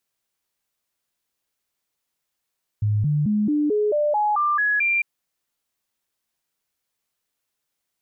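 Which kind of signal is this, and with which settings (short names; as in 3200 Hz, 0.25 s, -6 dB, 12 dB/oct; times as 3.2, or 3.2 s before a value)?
stepped sine 105 Hz up, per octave 2, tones 10, 0.22 s, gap 0.00 s -17.5 dBFS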